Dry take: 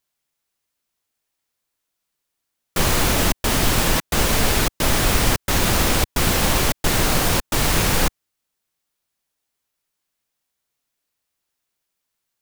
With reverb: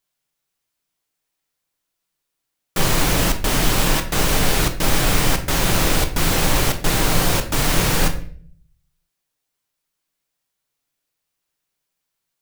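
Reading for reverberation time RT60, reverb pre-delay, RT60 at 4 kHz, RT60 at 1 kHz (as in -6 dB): 0.50 s, 5 ms, 0.40 s, 0.40 s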